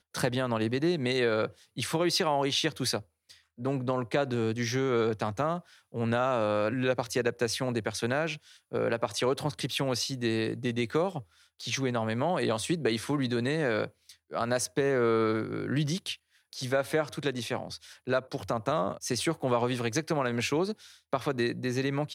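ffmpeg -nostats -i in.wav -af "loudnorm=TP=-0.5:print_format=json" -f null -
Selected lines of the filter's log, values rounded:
"input_i" : "-29.9",
"input_tp" : "-12.4",
"input_lra" : "1.8",
"input_thresh" : "-40.1",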